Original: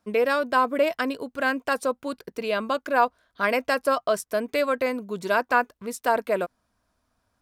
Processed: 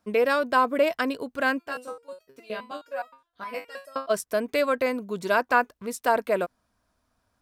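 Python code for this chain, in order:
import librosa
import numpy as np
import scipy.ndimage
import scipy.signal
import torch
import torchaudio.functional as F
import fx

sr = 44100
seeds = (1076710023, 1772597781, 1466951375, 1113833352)

y = fx.resonator_held(x, sr, hz=9.6, low_hz=72.0, high_hz=640.0, at=(1.58, 4.09), fade=0.02)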